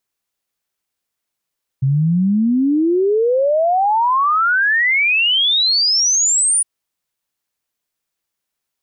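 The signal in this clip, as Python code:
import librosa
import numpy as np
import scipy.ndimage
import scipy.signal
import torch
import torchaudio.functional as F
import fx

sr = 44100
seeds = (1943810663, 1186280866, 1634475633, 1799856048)

y = fx.ess(sr, length_s=4.81, from_hz=130.0, to_hz=9700.0, level_db=-12.0)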